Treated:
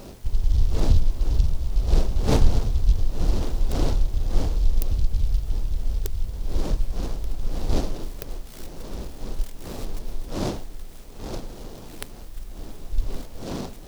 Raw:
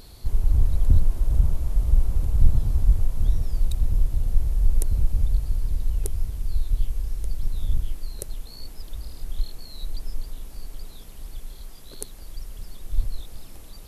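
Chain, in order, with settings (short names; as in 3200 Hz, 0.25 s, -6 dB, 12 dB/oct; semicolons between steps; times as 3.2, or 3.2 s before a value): wind noise 460 Hz -34 dBFS; noise-modulated delay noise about 4100 Hz, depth 0.08 ms; gain -1 dB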